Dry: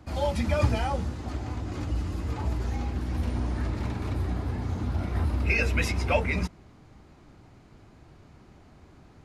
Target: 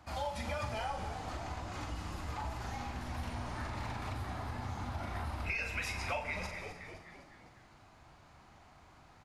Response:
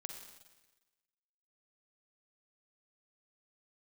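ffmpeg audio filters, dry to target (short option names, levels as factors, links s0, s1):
-filter_complex "[0:a]lowshelf=f=570:t=q:w=1.5:g=-8.5,asplit=6[s0][s1][s2][s3][s4][s5];[s1]adelay=256,afreqshift=-80,volume=0.168[s6];[s2]adelay=512,afreqshift=-160,volume=0.0923[s7];[s3]adelay=768,afreqshift=-240,volume=0.0507[s8];[s4]adelay=1024,afreqshift=-320,volume=0.0279[s9];[s5]adelay=1280,afreqshift=-400,volume=0.0153[s10];[s0][s6][s7][s8][s9][s10]amix=inputs=6:normalize=0,asplit=2[s11][s12];[1:a]atrim=start_sample=2205,adelay=41[s13];[s12][s13]afir=irnorm=-1:irlink=0,volume=0.75[s14];[s11][s14]amix=inputs=2:normalize=0,acompressor=threshold=0.0224:ratio=4,volume=0.794"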